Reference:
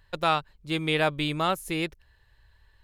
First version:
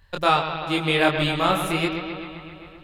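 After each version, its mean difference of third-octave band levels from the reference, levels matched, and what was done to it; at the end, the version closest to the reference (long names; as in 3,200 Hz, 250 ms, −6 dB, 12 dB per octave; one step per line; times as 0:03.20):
6.5 dB: on a send: bucket-brigade delay 130 ms, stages 4,096, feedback 72%, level −8.5 dB
on the sum: multi-voice chorus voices 2, 0.93 Hz, delay 24 ms, depth 3 ms
level +7.5 dB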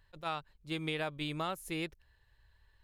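2.5 dB: downward compressor, threshold −25 dBFS, peak gain reduction 7 dB
level that may rise only so fast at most 320 dB per second
level −6.5 dB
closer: second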